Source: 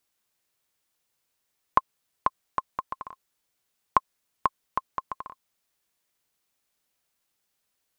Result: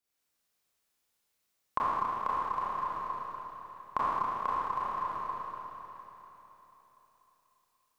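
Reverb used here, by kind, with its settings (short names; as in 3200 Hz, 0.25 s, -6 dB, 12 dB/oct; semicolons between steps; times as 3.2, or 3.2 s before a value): Schroeder reverb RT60 3.7 s, combs from 27 ms, DRR -10 dB; gain -11.5 dB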